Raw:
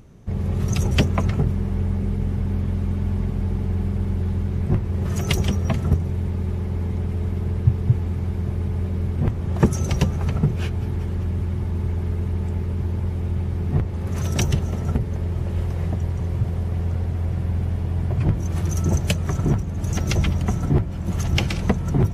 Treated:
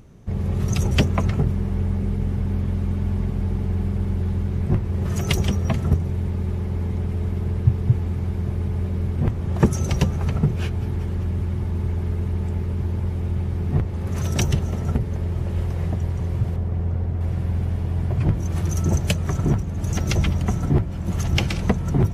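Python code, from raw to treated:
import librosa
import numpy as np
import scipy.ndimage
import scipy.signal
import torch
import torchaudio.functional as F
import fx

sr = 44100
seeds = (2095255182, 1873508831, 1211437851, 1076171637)

y = fx.high_shelf(x, sr, hz=2400.0, db=-11.0, at=(16.56, 17.21))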